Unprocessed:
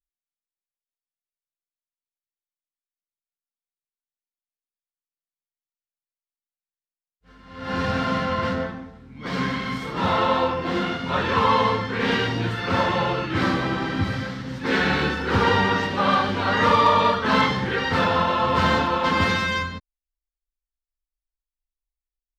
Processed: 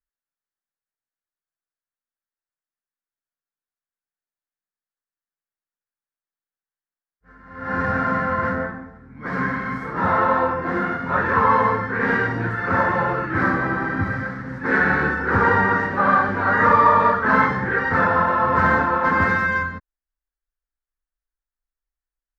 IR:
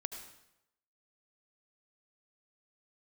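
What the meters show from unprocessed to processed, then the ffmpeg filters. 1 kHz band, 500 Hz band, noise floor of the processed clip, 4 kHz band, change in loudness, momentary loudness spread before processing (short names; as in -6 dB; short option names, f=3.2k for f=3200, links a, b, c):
+3.0 dB, +0.5 dB, under -85 dBFS, under -15 dB, +2.5 dB, 9 LU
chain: -af "highshelf=f=2.3k:t=q:w=3:g=-11"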